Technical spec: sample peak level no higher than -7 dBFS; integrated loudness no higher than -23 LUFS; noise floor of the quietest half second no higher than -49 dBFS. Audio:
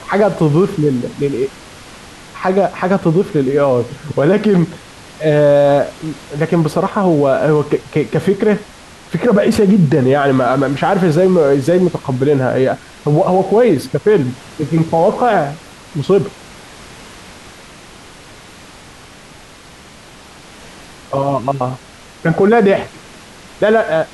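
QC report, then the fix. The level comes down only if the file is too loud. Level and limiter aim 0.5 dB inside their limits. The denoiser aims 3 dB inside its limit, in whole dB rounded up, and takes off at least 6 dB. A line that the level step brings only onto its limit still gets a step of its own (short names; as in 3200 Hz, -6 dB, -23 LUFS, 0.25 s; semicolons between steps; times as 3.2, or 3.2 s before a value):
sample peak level -3.0 dBFS: fail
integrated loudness -14.5 LUFS: fail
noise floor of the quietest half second -39 dBFS: fail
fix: denoiser 6 dB, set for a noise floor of -39 dBFS; gain -9 dB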